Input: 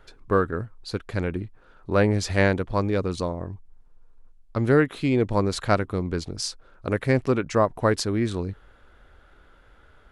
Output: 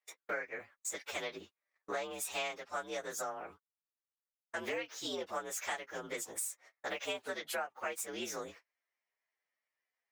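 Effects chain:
partials spread apart or drawn together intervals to 118%
high-pass filter 770 Hz 12 dB per octave
noise gate −57 dBFS, range −34 dB
dynamic equaliser 6,400 Hz, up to +4 dB, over −53 dBFS, Q 0.99
downward compressor 6 to 1, threshold −44 dBFS, peak gain reduction 21 dB
level +7 dB

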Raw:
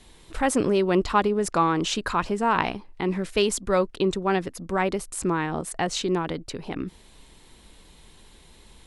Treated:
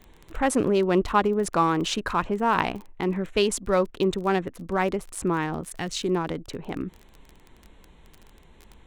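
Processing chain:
adaptive Wiener filter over 9 samples
0:05.53–0:06.02: parametric band 720 Hz −5 dB → −12.5 dB 1.9 octaves
surface crackle 20 per second −33 dBFS

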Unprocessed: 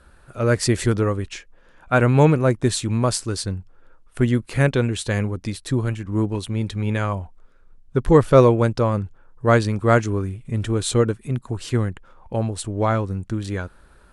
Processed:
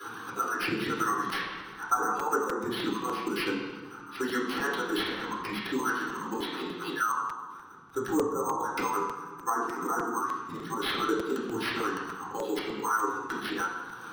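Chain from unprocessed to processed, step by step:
harmonic-percussive split with one part muted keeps percussive
high-pass filter 480 Hz 12 dB per octave
flat-topped bell 2,700 Hz −8.5 dB
phaser with its sweep stopped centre 2,300 Hz, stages 6
treble cut that deepens with the level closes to 650 Hz, closed at −24 dBFS
volume swells 178 ms
bad sample-rate conversion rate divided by 6×, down none, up hold
convolution reverb RT60 0.85 s, pre-delay 3 ms, DRR −7.5 dB
regular buffer underruns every 0.30 s, samples 256, repeat, from 0:00.99
multiband upward and downward compressor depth 70%
level +4.5 dB

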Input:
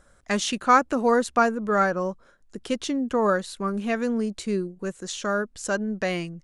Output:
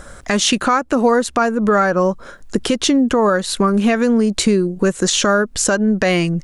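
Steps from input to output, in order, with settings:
downward compressor 10 to 1, threshold −32 dBFS, peak gain reduction 20.5 dB
boost into a limiter +25 dB
level −4 dB

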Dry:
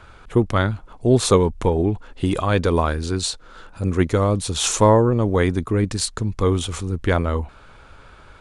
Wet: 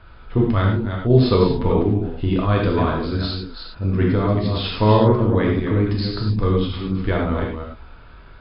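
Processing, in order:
delay that plays each chunk backwards 191 ms, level −6 dB
linear-phase brick-wall low-pass 5,200 Hz
low-shelf EQ 210 Hz +6.5 dB
reverb whose tail is shaped and stops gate 130 ms flat, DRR −1.5 dB
level −6 dB

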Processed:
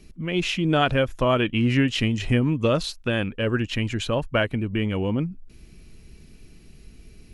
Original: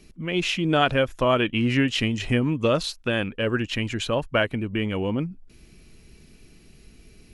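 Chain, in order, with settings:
low-shelf EQ 180 Hz +6 dB
level −1 dB

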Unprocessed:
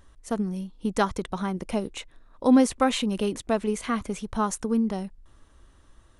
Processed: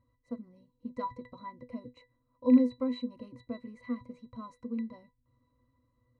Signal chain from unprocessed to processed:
loose part that buzzes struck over −23 dBFS, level −12 dBFS
resonances in every octave B, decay 0.15 s

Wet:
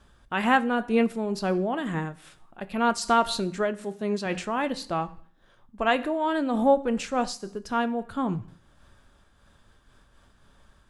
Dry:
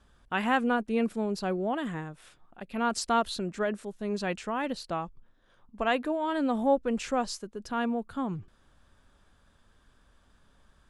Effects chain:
0:03.84–0:04.26: high-pass filter 100 Hz
convolution reverb RT60 0.60 s, pre-delay 4 ms, DRR 11 dB
amplitude modulation by smooth noise, depth 60%
level +6.5 dB

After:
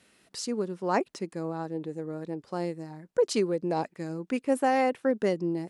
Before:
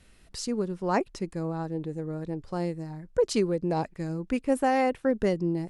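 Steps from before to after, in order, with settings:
high-pass filter 210 Hz 12 dB per octave

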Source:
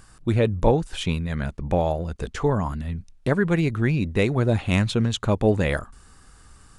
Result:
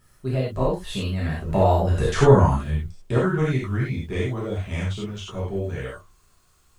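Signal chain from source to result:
source passing by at 0:02.16, 38 m/s, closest 15 metres
bit-depth reduction 12 bits, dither none
reverb whose tail is shaped and stops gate 120 ms flat, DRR −7 dB
level +1 dB

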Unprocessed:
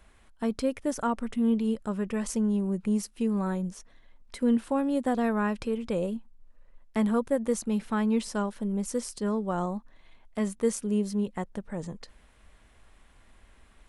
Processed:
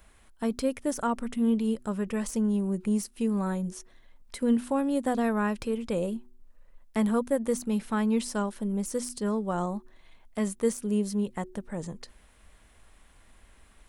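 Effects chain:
de-essing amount 75%
high-shelf EQ 8,900 Hz +10.5 dB
hum removal 123 Hz, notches 3

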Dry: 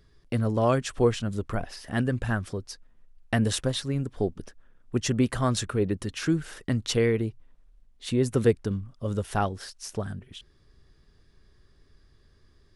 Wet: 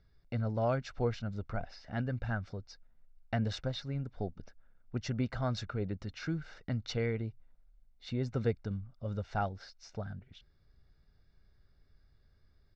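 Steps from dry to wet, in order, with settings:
inverse Chebyshev low-pass filter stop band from 9,300 Hz, stop band 40 dB
parametric band 3,100 Hz −9 dB 0.26 octaves
comb filter 1.4 ms, depth 45%
level −9 dB

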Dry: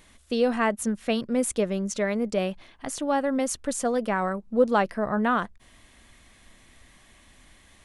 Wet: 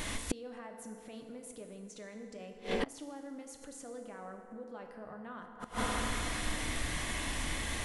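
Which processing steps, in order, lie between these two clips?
downward compressor 2.5 to 1, threshold −40 dBFS, peak gain reduction 16.5 dB
brickwall limiter −32 dBFS, peak gain reduction 8 dB
feedback delay network reverb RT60 2.7 s, low-frequency decay 0.75×, high-frequency decay 0.55×, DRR 3 dB
gate with flip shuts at −36 dBFS, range −25 dB
level +17 dB

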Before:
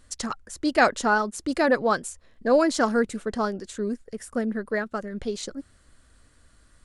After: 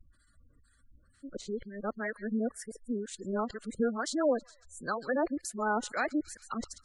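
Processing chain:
played backwards from end to start
downward compressor 2 to 1, threshold −25 dBFS, peak gain reduction 7 dB
two-band tremolo in antiphase 2.1 Hz, depth 70%, crossover 1,300 Hz
delay with a high-pass on its return 138 ms, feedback 50%, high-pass 3,100 Hz, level −7.5 dB
gate on every frequency bin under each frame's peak −20 dB strong
level −2 dB

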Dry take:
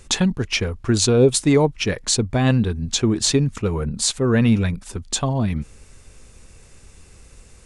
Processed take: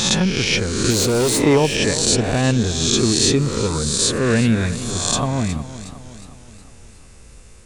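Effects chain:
peak hold with a rise ahead of every peak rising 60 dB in 1.18 s
0:00.90–0:01.42: gain into a clipping stage and back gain 14 dB
feedback echo with a swinging delay time 363 ms, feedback 51%, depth 63 cents, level −14 dB
level −1 dB

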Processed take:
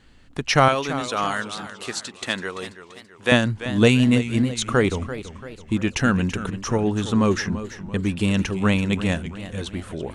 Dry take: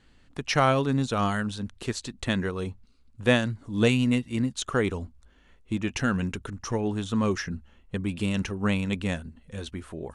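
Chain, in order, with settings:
0:00.68–0:03.32: high-pass filter 820 Hz 6 dB per octave
feedback echo with a swinging delay time 335 ms, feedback 48%, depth 128 cents, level −13 dB
level +6 dB

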